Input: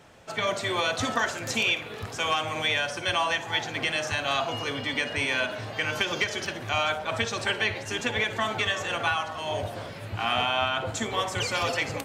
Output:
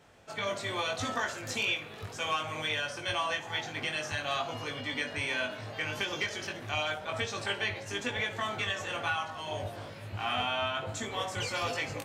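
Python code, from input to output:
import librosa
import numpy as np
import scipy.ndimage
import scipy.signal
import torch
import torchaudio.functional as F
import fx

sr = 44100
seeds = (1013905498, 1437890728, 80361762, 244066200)

y = fx.doubler(x, sr, ms=20.0, db=-3.5)
y = y * librosa.db_to_amplitude(-7.5)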